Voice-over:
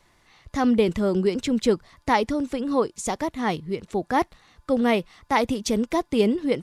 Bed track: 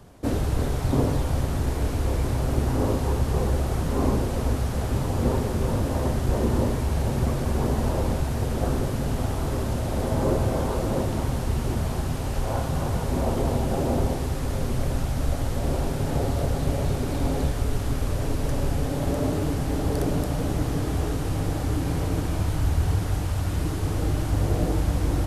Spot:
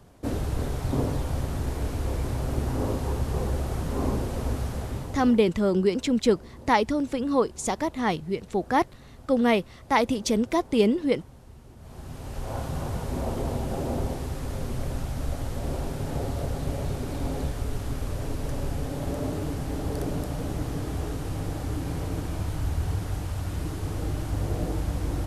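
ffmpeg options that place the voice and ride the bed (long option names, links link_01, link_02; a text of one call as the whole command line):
ffmpeg -i stem1.wav -i stem2.wav -filter_complex "[0:a]adelay=4600,volume=-0.5dB[link_01];[1:a]volume=14dB,afade=type=out:start_time=4.66:duration=0.78:silence=0.112202,afade=type=in:start_time=11.78:duration=0.87:silence=0.125893[link_02];[link_01][link_02]amix=inputs=2:normalize=0" out.wav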